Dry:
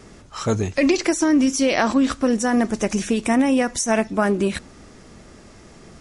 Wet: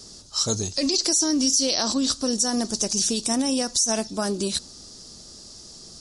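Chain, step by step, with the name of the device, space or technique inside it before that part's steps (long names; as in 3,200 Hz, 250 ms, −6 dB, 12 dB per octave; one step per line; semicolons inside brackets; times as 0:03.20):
over-bright horn tweeter (high shelf with overshoot 3,200 Hz +13.5 dB, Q 3; brickwall limiter −4.5 dBFS, peak gain reduction 11 dB)
level −6.5 dB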